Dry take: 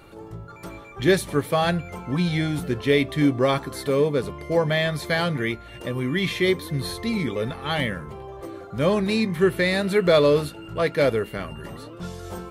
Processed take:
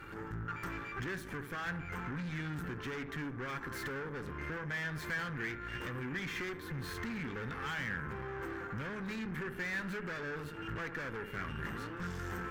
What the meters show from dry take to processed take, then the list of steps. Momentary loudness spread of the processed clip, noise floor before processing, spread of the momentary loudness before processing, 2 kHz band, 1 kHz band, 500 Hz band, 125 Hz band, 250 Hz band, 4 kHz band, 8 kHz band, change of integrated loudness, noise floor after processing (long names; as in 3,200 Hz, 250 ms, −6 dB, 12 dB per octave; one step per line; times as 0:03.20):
4 LU, −42 dBFS, 17 LU, −9.0 dB, −12.5 dB, −22.5 dB, −14.5 dB, −17.0 dB, −18.5 dB, −15.0 dB, −16.5 dB, −46 dBFS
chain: downward compressor 8 to 1, threshold −32 dBFS, peak gain reduction 18.5 dB
tape delay 71 ms, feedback 83%, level −12.5 dB, low-pass 1,200 Hz
tube saturation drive 40 dB, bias 0.8
graphic EQ with 15 bands 630 Hz −12 dB, 1,600 Hz +11 dB, 4,000 Hz −7 dB, 10,000 Hz −10 dB
level +3.5 dB